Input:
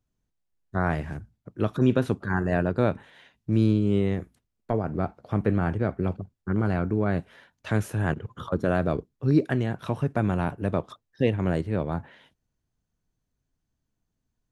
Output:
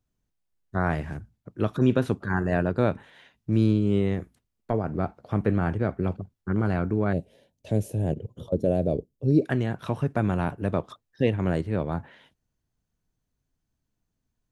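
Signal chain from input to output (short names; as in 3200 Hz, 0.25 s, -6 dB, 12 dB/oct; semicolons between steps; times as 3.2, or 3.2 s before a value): 7.13–9.42 EQ curve 350 Hz 0 dB, 570 Hz +4 dB, 1300 Hz -26 dB, 2600 Hz -9 dB, 10000 Hz -1 dB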